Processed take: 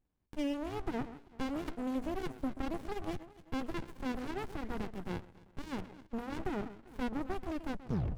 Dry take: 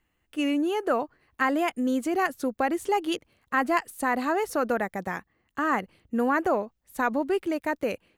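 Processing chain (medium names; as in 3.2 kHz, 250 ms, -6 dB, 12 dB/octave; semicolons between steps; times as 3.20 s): tape stop on the ending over 0.55 s; echo whose repeats swap between lows and highs 131 ms, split 1.1 kHz, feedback 58%, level -13 dB; peak limiter -17.5 dBFS, peak gain reduction 6.5 dB; sliding maximum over 65 samples; trim -6 dB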